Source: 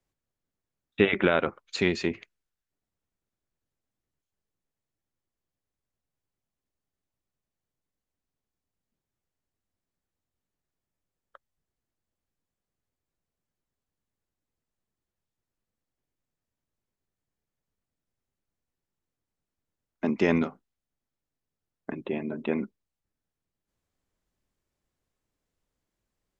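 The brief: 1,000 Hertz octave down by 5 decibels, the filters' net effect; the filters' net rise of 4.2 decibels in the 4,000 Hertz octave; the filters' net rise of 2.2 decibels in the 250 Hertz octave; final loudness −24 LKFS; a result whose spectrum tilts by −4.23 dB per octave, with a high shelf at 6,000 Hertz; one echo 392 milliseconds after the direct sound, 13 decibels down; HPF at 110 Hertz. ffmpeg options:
ffmpeg -i in.wav -af "highpass=110,equalizer=frequency=250:width_type=o:gain=3.5,equalizer=frequency=1000:width_type=o:gain=-8.5,equalizer=frequency=4000:width_type=o:gain=8,highshelf=frequency=6000:gain=-7.5,aecho=1:1:392:0.224,volume=3dB" out.wav

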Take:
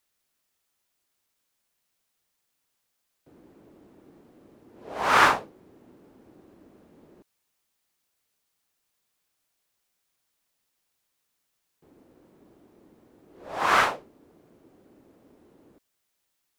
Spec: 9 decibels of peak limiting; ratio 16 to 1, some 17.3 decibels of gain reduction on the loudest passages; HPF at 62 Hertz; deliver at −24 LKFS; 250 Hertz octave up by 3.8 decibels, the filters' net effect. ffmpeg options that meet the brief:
ffmpeg -i in.wav -af "highpass=62,equalizer=frequency=250:width_type=o:gain=5,acompressor=threshold=-31dB:ratio=16,volume=23.5dB,alimiter=limit=-7.5dB:level=0:latency=1" out.wav

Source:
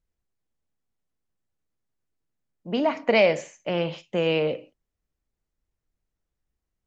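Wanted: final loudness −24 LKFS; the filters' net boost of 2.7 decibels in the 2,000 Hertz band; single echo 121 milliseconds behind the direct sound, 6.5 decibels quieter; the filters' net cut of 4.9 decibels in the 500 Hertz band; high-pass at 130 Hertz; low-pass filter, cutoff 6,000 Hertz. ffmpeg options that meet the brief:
ffmpeg -i in.wav -af "highpass=130,lowpass=6000,equalizer=frequency=500:width_type=o:gain=-6,equalizer=frequency=2000:width_type=o:gain=3.5,aecho=1:1:121:0.473,volume=1.5dB" out.wav

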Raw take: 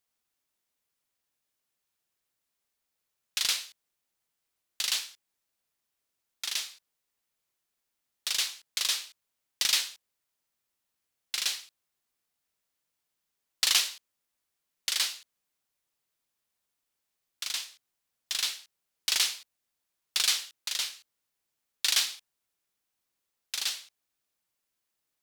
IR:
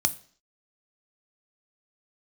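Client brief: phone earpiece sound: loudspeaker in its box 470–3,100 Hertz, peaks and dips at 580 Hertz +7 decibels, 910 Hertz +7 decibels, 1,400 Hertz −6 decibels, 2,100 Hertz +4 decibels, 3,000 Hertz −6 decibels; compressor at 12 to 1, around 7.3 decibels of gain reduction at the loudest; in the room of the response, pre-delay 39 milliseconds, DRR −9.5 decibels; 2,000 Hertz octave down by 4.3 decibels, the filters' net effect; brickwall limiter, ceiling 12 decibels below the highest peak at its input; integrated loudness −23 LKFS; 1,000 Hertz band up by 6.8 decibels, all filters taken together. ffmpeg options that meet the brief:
-filter_complex "[0:a]equalizer=frequency=1000:width_type=o:gain=7.5,equalizer=frequency=2000:width_type=o:gain=-6.5,acompressor=threshold=-28dB:ratio=12,alimiter=level_in=0.5dB:limit=-24dB:level=0:latency=1,volume=-0.5dB,asplit=2[link_01][link_02];[1:a]atrim=start_sample=2205,adelay=39[link_03];[link_02][link_03]afir=irnorm=-1:irlink=0,volume=1.5dB[link_04];[link_01][link_04]amix=inputs=2:normalize=0,highpass=470,equalizer=frequency=580:width_type=q:width=4:gain=7,equalizer=frequency=910:width_type=q:width=4:gain=7,equalizer=frequency=1400:width_type=q:width=4:gain=-6,equalizer=frequency=2100:width_type=q:width=4:gain=4,equalizer=frequency=3000:width_type=q:width=4:gain=-6,lowpass=frequency=3100:width=0.5412,lowpass=frequency=3100:width=1.3066,volume=15dB"

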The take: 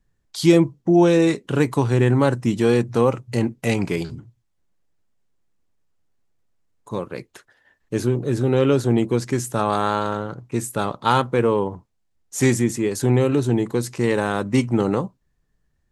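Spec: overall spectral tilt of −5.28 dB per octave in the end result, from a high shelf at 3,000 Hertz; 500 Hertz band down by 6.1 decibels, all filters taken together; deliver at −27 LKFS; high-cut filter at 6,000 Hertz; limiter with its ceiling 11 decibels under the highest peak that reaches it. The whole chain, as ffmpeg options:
ffmpeg -i in.wav -af "lowpass=6000,equalizer=frequency=500:width_type=o:gain=-8.5,highshelf=frequency=3000:gain=7.5,alimiter=limit=-15dB:level=0:latency=1" out.wav

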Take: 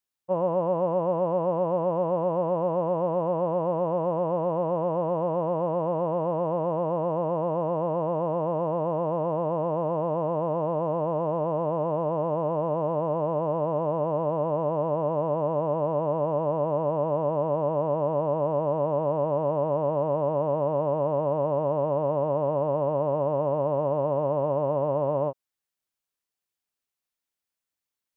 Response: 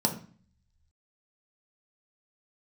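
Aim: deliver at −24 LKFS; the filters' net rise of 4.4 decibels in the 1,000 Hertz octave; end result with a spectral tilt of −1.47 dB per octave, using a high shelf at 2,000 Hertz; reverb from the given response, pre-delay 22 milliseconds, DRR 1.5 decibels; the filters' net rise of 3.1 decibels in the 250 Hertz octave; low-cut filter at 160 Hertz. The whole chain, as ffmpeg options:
-filter_complex "[0:a]highpass=160,equalizer=frequency=250:width_type=o:gain=6.5,equalizer=frequency=1000:width_type=o:gain=5.5,highshelf=frequency=2000:gain=-3.5,asplit=2[link_01][link_02];[1:a]atrim=start_sample=2205,adelay=22[link_03];[link_02][link_03]afir=irnorm=-1:irlink=0,volume=-10.5dB[link_04];[link_01][link_04]amix=inputs=2:normalize=0,volume=-5dB"

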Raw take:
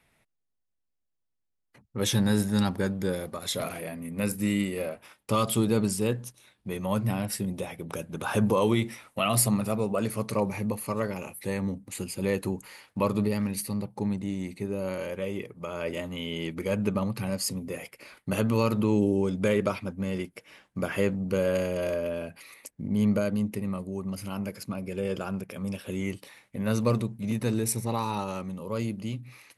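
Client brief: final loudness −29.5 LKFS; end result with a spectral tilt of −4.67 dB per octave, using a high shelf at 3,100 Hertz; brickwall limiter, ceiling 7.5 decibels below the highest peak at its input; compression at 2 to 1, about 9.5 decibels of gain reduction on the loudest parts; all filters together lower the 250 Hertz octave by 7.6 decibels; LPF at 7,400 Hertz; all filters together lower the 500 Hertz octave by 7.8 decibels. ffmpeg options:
ffmpeg -i in.wav -af "lowpass=7400,equalizer=frequency=250:width_type=o:gain=-9,equalizer=frequency=500:width_type=o:gain=-7,highshelf=frequency=3100:gain=4,acompressor=threshold=-41dB:ratio=2,volume=13dB,alimiter=limit=-17dB:level=0:latency=1" out.wav

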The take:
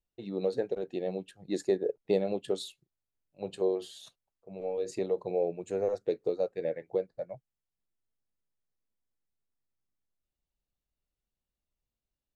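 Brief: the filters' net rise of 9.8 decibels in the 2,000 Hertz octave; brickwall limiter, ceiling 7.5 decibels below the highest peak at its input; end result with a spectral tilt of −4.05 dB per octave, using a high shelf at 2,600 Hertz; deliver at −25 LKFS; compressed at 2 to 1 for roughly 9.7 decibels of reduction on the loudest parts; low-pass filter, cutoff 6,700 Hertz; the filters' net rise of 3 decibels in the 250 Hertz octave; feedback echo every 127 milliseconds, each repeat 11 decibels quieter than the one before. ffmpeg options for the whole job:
ffmpeg -i in.wav -af "lowpass=6700,equalizer=frequency=250:width_type=o:gain=4.5,equalizer=frequency=2000:width_type=o:gain=8.5,highshelf=frequency=2600:gain=7.5,acompressor=threshold=-38dB:ratio=2,alimiter=level_in=4dB:limit=-24dB:level=0:latency=1,volume=-4dB,aecho=1:1:127|254|381:0.282|0.0789|0.0221,volume=15.5dB" out.wav

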